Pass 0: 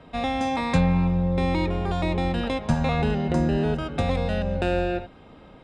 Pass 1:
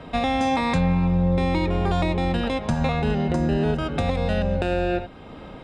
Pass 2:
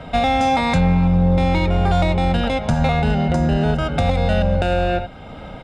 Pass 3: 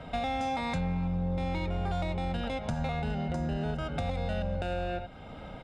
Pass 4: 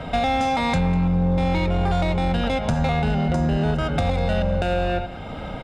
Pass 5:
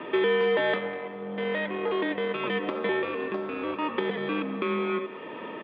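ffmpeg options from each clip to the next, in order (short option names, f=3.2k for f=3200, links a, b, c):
-af "alimiter=limit=-21.5dB:level=0:latency=1:release=462,volume=8.5dB"
-filter_complex "[0:a]aecho=1:1:1.4:0.47,asplit=2[a][b];[b]asoftclip=type=hard:threshold=-18dB,volume=-3.5dB[c];[a][c]amix=inputs=2:normalize=0"
-af "acompressor=threshold=-24dB:ratio=2,volume=-9dB"
-filter_complex "[0:a]asplit=2[a][b];[b]asoftclip=type=hard:threshold=-33.5dB,volume=-7dB[c];[a][c]amix=inputs=2:normalize=0,aecho=1:1:198:0.126,volume=8.5dB"
-af "highpass=f=500:t=q:w=0.5412,highpass=f=500:t=q:w=1.307,lowpass=f=3.5k:t=q:w=0.5176,lowpass=f=3.5k:t=q:w=0.7071,lowpass=f=3.5k:t=q:w=1.932,afreqshift=-330,highpass=260"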